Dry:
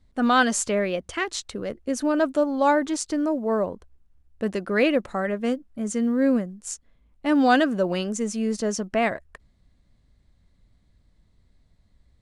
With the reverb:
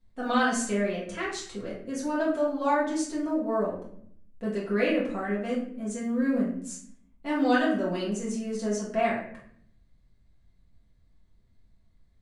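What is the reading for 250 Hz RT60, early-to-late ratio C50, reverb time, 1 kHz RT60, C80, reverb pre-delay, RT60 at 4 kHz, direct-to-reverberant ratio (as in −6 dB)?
1.0 s, 5.0 dB, 0.65 s, 0.55 s, 8.5 dB, 4 ms, 0.45 s, −6.5 dB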